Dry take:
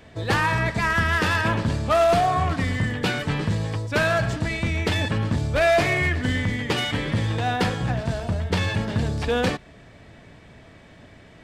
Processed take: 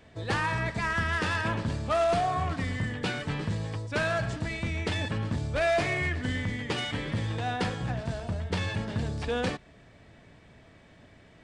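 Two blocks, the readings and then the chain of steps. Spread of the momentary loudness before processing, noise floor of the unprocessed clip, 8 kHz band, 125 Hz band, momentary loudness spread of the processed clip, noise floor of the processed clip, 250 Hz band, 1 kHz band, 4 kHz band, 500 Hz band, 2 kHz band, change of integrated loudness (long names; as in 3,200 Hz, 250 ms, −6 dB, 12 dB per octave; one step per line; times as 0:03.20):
7 LU, −48 dBFS, −7.0 dB, −7.0 dB, 7 LU, −55 dBFS, −7.0 dB, −7.0 dB, −7.0 dB, −7.0 dB, −7.0 dB, −7.0 dB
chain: downsampling to 22,050 Hz
level −7 dB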